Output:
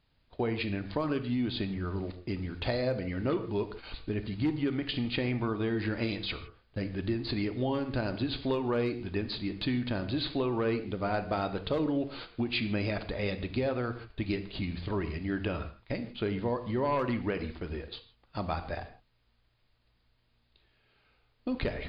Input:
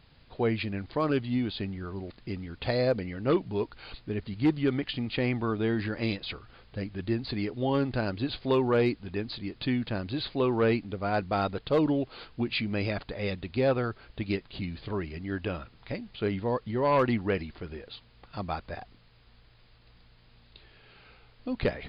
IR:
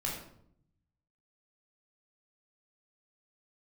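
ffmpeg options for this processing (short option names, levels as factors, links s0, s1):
-filter_complex "[0:a]agate=range=0.178:threshold=0.00562:ratio=16:detection=peak,acompressor=threshold=0.0355:ratio=6,asplit=2[s0][s1];[1:a]atrim=start_sample=2205,atrim=end_sample=3969,asetrate=22932,aresample=44100[s2];[s1][s2]afir=irnorm=-1:irlink=0,volume=0.2[s3];[s0][s3]amix=inputs=2:normalize=0"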